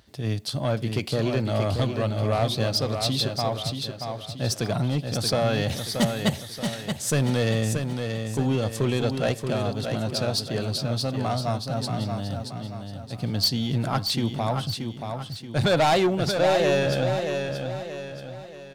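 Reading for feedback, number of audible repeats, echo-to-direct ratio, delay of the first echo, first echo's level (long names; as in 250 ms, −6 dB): 43%, 4, −5.0 dB, 629 ms, −6.0 dB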